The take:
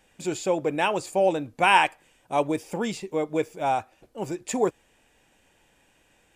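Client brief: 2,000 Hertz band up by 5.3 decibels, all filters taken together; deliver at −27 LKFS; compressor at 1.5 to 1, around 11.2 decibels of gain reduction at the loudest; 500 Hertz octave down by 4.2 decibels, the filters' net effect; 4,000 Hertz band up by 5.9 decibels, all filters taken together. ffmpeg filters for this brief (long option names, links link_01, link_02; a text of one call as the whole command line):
ffmpeg -i in.wav -af "equalizer=frequency=500:width_type=o:gain=-5.5,equalizer=frequency=2000:width_type=o:gain=5.5,equalizer=frequency=4000:width_type=o:gain=6,acompressor=threshold=-43dB:ratio=1.5,volume=6.5dB" out.wav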